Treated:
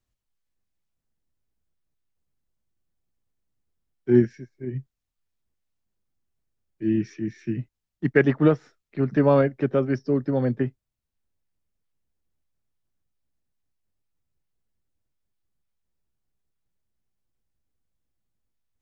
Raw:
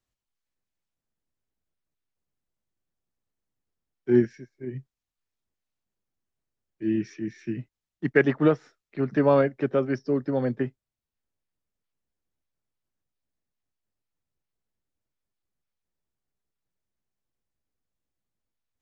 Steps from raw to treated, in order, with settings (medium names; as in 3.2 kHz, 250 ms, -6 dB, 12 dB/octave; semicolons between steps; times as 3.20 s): bass shelf 180 Hz +8.5 dB